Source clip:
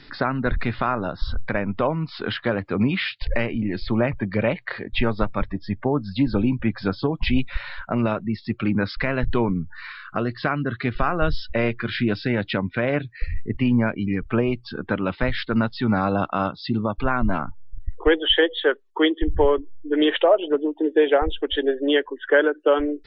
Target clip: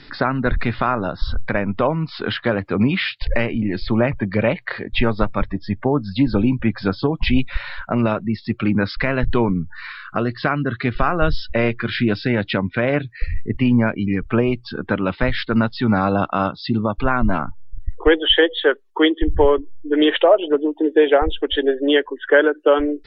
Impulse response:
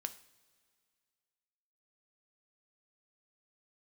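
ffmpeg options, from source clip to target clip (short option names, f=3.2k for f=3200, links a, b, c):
-af "volume=4dB" -ar 48000 -c:a libmp3lame -b:a 64k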